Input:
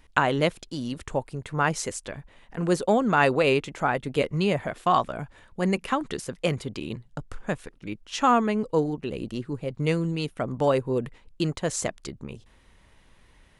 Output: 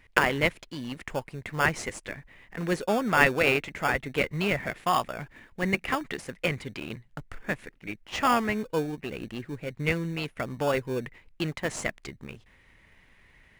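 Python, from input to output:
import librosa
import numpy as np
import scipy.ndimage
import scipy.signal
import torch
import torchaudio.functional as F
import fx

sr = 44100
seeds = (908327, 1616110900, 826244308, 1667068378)

p1 = fx.peak_eq(x, sr, hz=2000.0, db=15.0, octaves=1.1)
p2 = fx.sample_hold(p1, sr, seeds[0], rate_hz=2000.0, jitter_pct=0)
p3 = p1 + (p2 * 10.0 ** (-7.0 / 20.0))
y = p3 * 10.0 ** (-8.0 / 20.0)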